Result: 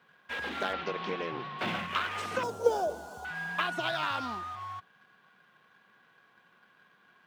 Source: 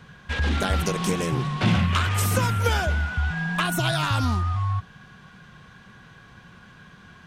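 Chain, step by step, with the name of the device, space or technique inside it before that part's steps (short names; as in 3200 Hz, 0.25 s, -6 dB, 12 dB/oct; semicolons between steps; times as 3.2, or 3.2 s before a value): phone line with mismatched companding (BPF 380–3400 Hz; G.711 law mismatch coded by A); 0.73–1.59 LPF 4600 Hz 24 dB/oct; 2.43–3.25 EQ curve 210 Hz 0 dB, 460 Hz +10 dB, 820 Hz +3 dB, 2100 Hz -24 dB, 6300 Hz +6 dB; gain -4 dB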